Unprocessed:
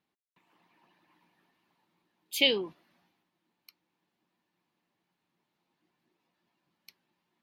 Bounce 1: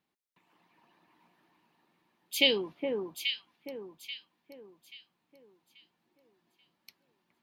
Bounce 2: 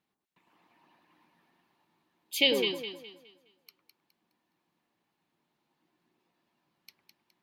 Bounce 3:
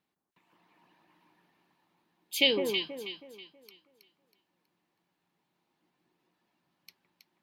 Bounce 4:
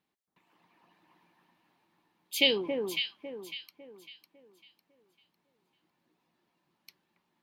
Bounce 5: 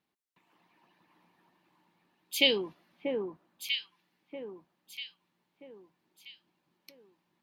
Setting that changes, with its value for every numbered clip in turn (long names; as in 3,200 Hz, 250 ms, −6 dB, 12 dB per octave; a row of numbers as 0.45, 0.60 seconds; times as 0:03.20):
delay that swaps between a low-pass and a high-pass, delay time: 417, 104, 161, 276, 640 milliseconds